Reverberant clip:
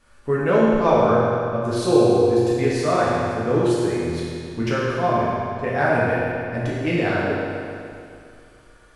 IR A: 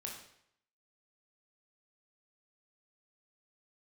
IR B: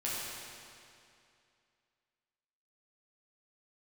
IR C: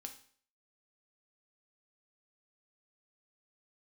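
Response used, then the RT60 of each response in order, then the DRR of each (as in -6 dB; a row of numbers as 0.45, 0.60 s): B; 0.70, 2.5, 0.50 s; -1.5, -8.0, 4.5 dB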